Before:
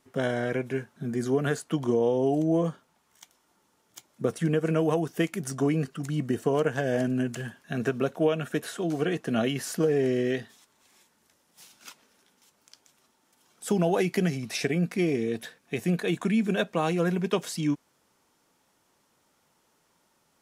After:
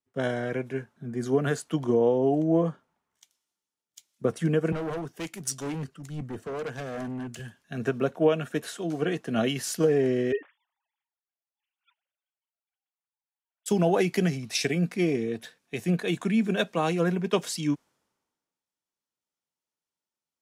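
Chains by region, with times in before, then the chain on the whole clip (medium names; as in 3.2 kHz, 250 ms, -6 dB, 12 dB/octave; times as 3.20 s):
4.72–7.39 s: hard clipper -27 dBFS + three bands expanded up and down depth 40%
10.32–13.66 s: formants replaced by sine waves + comb 7.3 ms, depth 32%
whole clip: treble shelf 12 kHz -6 dB; three bands expanded up and down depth 70%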